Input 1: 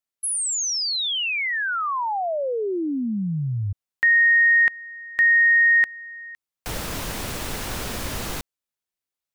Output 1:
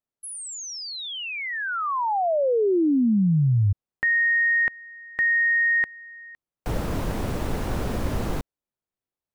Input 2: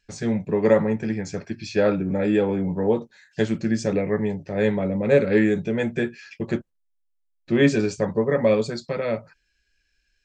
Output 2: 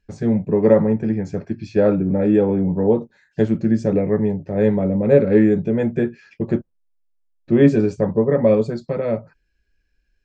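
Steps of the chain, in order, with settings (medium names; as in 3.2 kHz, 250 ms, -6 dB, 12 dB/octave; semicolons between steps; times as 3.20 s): tilt shelf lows +8.5 dB, about 1.4 kHz; trim -2.5 dB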